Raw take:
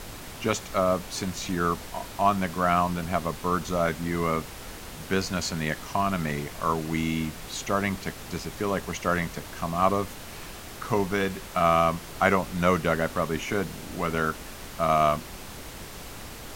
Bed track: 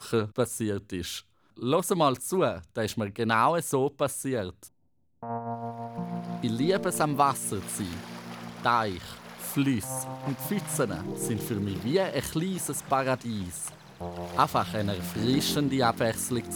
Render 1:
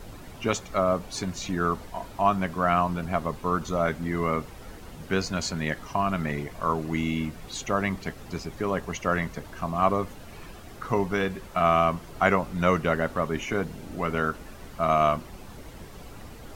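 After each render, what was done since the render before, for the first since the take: noise reduction 10 dB, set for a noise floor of -41 dBFS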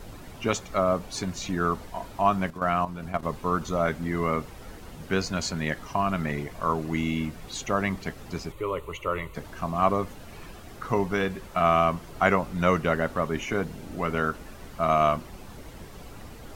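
2.50–3.23 s: level held to a coarse grid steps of 12 dB; 8.52–9.35 s: static phaser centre 1.1 kHz, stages 8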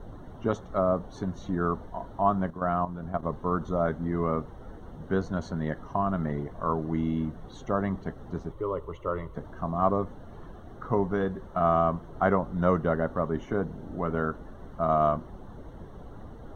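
word length cut 10-bit, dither triangular; boxcar filter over 18 samples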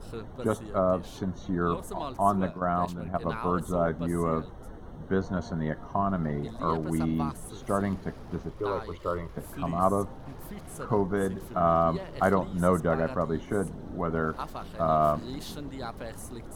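add bed track -13.5 dB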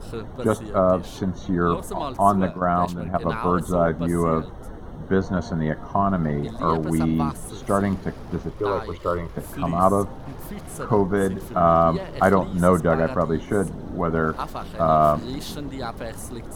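trim +6.5 dB

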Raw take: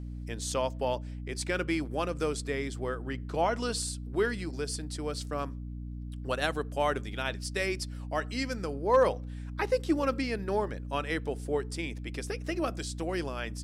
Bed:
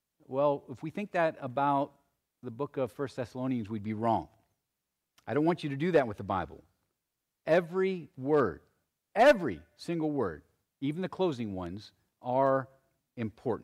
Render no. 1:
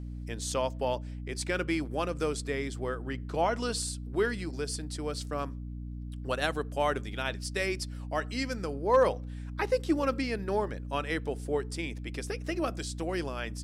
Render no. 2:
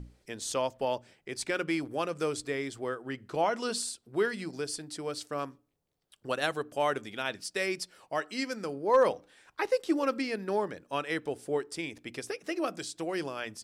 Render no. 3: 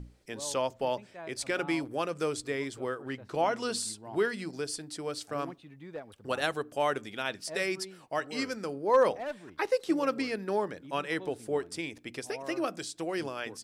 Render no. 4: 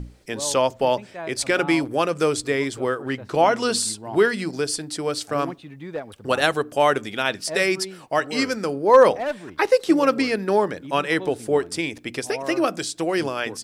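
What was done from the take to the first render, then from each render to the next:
no audible change
hum notches 60/120/180/240/300 Hz
add bed -16.5 dB
trim +10.5 dB

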